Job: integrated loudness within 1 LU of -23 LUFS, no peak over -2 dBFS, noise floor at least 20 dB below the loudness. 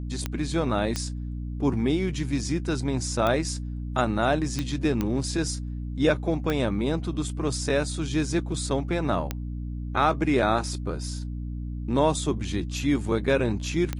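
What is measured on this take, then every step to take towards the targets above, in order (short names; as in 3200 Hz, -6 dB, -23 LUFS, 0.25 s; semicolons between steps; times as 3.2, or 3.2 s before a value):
clicks 8; hum 60 Hz; harmonics up to 300 Hz; hum level -30 dBFS; loudness -27.0 LUFS; peak -9.5 dBFS; loudness target -23.0 LUFS
-> de-click; de-hum 60 Hz, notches 5; gain +4 dB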